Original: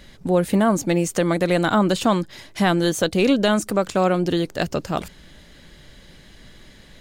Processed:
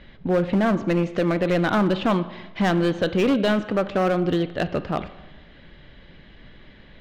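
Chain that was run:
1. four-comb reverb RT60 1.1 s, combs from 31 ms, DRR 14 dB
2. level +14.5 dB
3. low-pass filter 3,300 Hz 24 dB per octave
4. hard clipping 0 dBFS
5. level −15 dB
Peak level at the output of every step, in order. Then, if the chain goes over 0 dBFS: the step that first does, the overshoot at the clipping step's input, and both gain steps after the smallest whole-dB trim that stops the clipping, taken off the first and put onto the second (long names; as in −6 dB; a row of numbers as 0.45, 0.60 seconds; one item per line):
−6.5, +8.0, +8.0, 0.0, −15.0 dBFS
step 2, 8.0 dB
step 2 +6.5 dB, step 5 −7 dB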